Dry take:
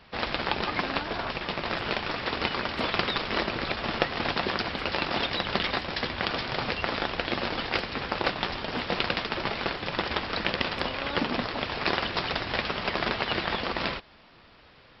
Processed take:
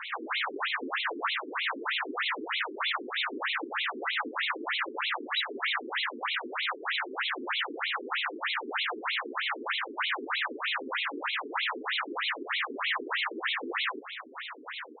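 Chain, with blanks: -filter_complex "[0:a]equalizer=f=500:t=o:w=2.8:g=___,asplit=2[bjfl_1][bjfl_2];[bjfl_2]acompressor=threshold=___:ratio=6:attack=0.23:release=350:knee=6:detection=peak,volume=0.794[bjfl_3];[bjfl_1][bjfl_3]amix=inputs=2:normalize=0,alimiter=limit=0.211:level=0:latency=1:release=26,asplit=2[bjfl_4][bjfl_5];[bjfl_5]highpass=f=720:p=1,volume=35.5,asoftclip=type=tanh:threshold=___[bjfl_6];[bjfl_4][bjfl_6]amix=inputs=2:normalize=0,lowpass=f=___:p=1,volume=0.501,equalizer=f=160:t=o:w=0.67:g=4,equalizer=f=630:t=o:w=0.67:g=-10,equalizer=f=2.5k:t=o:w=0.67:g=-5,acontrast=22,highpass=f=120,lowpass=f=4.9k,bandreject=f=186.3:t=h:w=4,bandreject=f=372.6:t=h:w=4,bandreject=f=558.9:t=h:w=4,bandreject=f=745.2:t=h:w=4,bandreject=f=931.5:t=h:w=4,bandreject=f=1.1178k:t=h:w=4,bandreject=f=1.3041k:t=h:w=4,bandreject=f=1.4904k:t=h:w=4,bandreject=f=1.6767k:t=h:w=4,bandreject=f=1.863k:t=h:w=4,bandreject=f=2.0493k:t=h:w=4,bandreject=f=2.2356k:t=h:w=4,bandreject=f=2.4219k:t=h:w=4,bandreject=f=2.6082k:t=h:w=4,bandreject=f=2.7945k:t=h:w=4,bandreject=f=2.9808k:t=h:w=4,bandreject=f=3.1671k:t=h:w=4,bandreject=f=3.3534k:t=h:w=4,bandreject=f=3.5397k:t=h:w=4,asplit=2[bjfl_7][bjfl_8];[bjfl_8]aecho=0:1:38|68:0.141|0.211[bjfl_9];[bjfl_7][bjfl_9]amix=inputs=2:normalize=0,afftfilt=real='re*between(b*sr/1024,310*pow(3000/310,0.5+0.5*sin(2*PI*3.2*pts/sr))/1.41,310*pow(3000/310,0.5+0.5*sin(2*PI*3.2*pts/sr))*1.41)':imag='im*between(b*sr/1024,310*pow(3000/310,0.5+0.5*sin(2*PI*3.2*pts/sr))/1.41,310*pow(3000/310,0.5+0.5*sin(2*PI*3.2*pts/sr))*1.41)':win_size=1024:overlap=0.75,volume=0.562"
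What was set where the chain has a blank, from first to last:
-6.5, 0.00794, 0.211, 3k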